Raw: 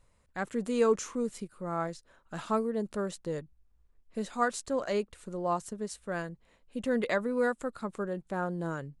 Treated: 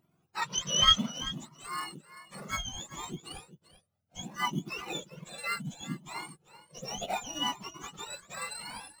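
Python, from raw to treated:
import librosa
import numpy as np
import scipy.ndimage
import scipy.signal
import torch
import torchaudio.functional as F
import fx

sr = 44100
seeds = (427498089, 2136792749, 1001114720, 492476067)

p1 = fx.octave_mirror(x, sr, pivot_hz=1200.0)
p2 = fx.peak_eq(p1, sr, hz=630.0, db=3.0, octaves=0.77)
p3 = fx.sample_hold(p2, sr, seeds[0], rate_hz=3200.0, jitter_pct=0)
p4 = p2 + F.gain(torch.from_numpy(p3), -5.0).numpy()
p5 = fx.spec_box(p4, sr, start_s=0.35, length_s=0.75, low_hz=910.0, high_hz=6200.0, gain_db=10)
p6 = p5 + fx.echo_single(p5, sr, ms=389, db=-15.0, dry=0)
y = fx.comb_cascade(p6, sr, direction='rising', hz=0.66)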